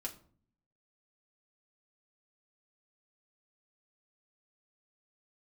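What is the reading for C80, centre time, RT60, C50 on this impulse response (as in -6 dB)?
18.5 dB, 11 ms, 0.50 s, 14.5 dB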